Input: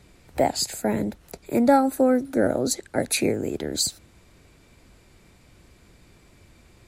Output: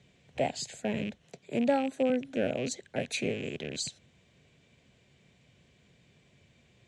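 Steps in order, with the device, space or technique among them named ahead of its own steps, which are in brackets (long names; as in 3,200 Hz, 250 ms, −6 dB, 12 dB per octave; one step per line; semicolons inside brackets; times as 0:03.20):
0:01.24–0:02.10: high-pass filter 100 Hz 24 dB per octave
car door speaker with a rattle (loose part that buzzes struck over −34 dBFS, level −24 dBFS; loudspeaker in its box 110–6,900 Hz, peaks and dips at 140 Hz +5 dB, 320 Hz −9 dB, 890 Hz −7 dB, 1,300 Hz −10 dB, 3,100 Hz +6 dB, 4,800 Hz −7 dB)
level −6.5 dB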